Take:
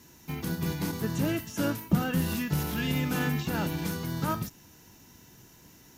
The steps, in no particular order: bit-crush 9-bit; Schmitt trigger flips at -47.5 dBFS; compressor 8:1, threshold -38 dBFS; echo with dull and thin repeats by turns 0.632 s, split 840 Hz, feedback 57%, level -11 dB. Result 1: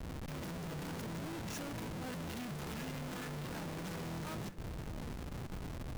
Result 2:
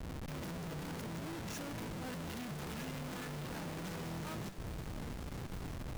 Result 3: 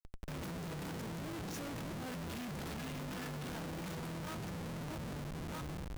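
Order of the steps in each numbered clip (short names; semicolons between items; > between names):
compressor > Schmitt trigger > bit-crush > echo with dull and thin repeats by turns; compressor > Schmitt trigger > echo with dull and thin repeats by turns > bit-crush; echo with dull and thin repeats by turns > bit-crush > compressor > Schmitt trigger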